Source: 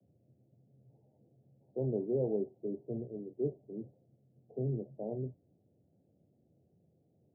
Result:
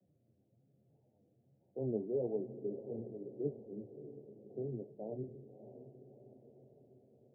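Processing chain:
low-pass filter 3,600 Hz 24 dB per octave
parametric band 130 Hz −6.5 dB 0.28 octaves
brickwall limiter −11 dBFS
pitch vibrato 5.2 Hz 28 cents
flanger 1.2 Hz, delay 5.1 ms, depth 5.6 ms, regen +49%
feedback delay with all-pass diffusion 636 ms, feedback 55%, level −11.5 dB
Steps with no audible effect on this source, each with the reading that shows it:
low-pass filter 3,600 Hz: nothing at its input above 760 Hz
brickwall limiter −11 dBFS: peak of its input −22.0 dBFS

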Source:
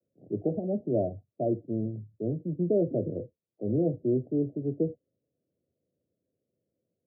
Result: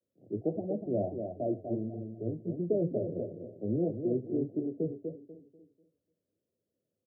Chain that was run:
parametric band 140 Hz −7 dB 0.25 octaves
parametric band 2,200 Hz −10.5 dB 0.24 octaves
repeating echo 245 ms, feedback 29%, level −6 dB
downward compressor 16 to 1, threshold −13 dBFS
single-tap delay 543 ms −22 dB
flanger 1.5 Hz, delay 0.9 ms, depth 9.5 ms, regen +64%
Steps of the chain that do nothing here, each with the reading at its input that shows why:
parametric band 2,200 Hz: nothing at its input above 720 Hz
downward compressor, threshold −13 dBFS: peak of its input −14.5 dBFS

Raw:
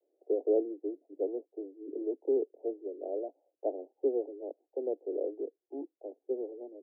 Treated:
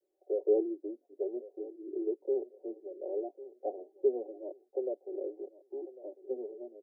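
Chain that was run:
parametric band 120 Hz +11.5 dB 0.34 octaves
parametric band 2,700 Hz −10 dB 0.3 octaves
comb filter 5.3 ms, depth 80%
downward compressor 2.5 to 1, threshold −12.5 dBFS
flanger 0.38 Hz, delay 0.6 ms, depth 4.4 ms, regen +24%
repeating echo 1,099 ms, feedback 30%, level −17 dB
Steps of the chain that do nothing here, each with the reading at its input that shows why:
parametric band 120 Hz: nothing at its input below 240 Hz
parametric band 2,700 Hz: nothing at its input above 810 Hz
downward compressor, threshold −12.5 dBFS: peak of its input −16.0 dBFS

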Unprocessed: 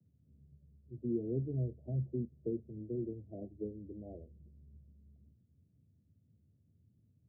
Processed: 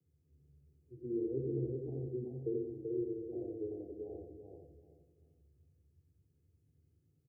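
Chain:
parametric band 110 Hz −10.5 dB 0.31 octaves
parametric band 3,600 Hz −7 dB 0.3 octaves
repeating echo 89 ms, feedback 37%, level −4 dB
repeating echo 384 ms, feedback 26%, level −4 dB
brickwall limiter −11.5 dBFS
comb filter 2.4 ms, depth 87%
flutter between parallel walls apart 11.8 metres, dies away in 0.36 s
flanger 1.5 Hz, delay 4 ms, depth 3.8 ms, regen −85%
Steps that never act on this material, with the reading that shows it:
parametric band 3,600 Hz: nothing at its input above 720 Hz
brickwall limiter −11.5 dBFS: peak of its input −24.0 dBFS

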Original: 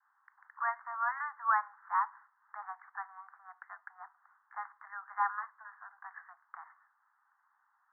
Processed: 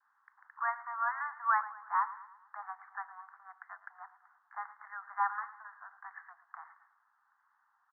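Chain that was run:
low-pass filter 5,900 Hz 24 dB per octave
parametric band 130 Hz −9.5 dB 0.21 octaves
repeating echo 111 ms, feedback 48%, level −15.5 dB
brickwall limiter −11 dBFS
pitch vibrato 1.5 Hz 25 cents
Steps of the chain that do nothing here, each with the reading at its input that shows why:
low-pass filter 5,900 Hz: nothing at its input above 2,200 Hz
parametric band 130 Hz: nothing at its input below 600 Hz
brickwall limiter −11 dBFS: peak of its input −16.5 dBFS

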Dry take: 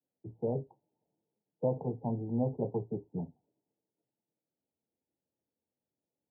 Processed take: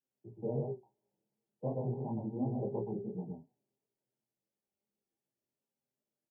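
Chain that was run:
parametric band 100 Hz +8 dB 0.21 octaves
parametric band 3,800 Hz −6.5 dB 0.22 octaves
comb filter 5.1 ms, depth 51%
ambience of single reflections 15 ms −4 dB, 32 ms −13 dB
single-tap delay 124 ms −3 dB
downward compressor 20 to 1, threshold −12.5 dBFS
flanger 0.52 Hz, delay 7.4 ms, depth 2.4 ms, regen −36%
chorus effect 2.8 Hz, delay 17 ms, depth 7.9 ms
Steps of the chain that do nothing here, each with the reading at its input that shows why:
parametric band 3,800 Hz: nothing at its input above 960 Hz
downward compressor, threshold −12.5 dBFS: peak of its input −17.0 dBFS

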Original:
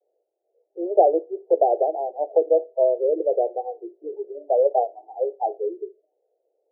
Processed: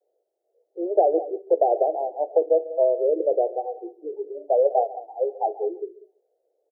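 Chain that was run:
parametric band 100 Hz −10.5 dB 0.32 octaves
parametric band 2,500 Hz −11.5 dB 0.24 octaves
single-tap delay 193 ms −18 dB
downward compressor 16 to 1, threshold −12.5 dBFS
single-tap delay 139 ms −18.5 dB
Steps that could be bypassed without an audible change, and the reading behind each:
parametric band 100 Hz: nothing at its input below 290 Hz
parametric band 2,500 Hz: nothing at its input above 850 Hz

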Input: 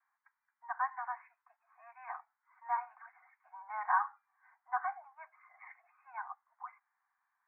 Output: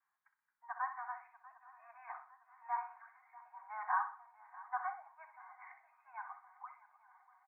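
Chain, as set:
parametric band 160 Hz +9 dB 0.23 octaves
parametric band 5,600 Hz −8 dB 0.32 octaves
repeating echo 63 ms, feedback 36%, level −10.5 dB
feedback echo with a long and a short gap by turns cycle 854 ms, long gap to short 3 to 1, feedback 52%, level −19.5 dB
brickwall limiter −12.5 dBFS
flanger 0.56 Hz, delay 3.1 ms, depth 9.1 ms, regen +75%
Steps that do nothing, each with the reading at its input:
parametric band 160 Hz: nothing at its input below 640 Hz
parametric band 5,600 Hz: nothing at its input above 2,300 Hz
brickwall limiter −12.5 dBFS: peak of its input −17.5 dBFS

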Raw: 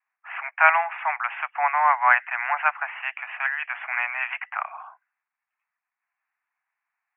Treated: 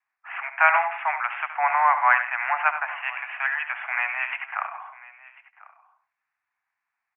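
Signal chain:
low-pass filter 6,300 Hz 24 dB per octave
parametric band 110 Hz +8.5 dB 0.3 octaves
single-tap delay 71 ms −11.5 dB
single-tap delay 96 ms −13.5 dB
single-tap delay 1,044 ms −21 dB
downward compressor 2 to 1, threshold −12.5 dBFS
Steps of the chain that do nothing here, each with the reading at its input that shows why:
low-pass filter 6,300 Hz: nothing at its input above 3,000 Hz
parametric band 110 Hz: nothing at its input below 540 Hz

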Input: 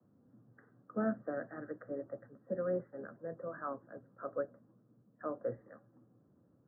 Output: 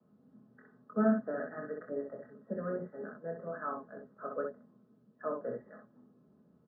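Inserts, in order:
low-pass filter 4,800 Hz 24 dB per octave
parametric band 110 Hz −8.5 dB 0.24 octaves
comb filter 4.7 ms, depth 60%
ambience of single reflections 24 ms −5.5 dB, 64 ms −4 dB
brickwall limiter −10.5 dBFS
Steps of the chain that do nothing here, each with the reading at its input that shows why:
low-pass filter 4,800 Hz: nothing at its input above 1,700 Hz
brickwall limiter −10.5 dBFS: peak of its input −16.0 dBFS

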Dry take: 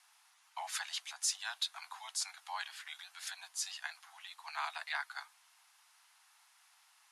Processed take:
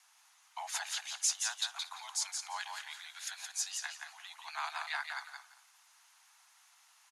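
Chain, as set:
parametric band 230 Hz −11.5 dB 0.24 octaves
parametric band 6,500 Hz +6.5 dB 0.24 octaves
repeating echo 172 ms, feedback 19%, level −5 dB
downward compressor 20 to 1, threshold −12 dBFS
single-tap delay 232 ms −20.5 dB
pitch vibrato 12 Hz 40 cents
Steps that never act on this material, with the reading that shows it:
parametric band 230 Hz: nothing at its input below 570 Hz
downward compressor, threshold −12 dBFS: peak of its input −19.0 dBFS

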